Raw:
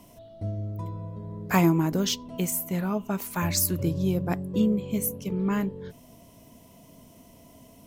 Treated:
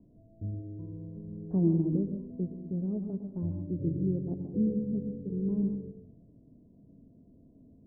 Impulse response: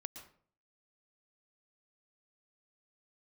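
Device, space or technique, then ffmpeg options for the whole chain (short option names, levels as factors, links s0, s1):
next room: -filter_complex "[0:a]lowpass=f=430:w=0.5412,lowpass=f=430:w=1.3066[s0];[1:a]atrim=start_sample=2205[s1];[s0][s1]afir=irnorm=-1:irlink=0"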